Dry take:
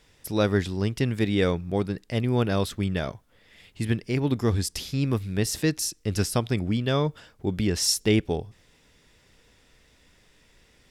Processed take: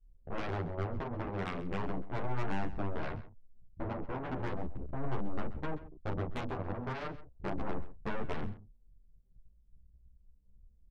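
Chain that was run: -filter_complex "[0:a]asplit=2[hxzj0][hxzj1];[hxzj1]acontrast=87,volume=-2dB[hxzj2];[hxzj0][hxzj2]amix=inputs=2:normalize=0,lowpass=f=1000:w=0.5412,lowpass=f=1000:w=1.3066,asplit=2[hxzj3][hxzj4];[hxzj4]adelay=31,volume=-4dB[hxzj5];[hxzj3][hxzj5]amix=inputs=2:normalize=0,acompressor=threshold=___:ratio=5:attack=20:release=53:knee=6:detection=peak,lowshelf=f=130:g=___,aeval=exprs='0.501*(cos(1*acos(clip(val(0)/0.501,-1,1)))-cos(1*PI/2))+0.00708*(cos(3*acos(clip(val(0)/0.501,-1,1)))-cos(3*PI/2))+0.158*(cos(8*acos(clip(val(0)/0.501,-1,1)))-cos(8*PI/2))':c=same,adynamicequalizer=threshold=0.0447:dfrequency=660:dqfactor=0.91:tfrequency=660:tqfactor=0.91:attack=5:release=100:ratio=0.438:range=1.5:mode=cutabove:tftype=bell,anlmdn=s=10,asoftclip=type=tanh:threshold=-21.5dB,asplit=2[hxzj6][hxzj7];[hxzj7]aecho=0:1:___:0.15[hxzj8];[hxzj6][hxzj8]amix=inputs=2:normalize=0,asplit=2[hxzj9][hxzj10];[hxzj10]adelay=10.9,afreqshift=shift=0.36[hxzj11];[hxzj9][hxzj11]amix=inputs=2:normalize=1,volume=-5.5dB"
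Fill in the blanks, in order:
-22dB, 6.5, 131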